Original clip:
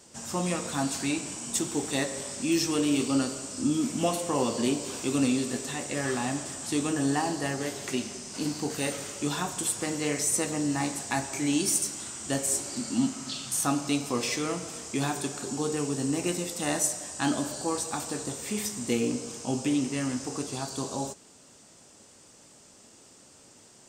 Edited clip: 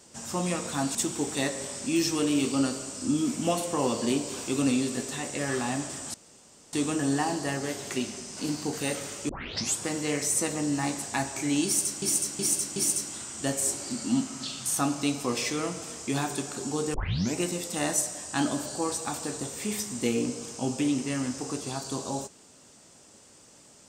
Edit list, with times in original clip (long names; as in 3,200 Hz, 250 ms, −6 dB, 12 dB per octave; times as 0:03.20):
0:00.95–0:01.51: remove
0:06.70: splice in room tone 0.59 s
0:09.26: tape start 0.49 s
0:11.62–0:11.99: repeat, 4 plays
0:15.80: tape start 0.42 s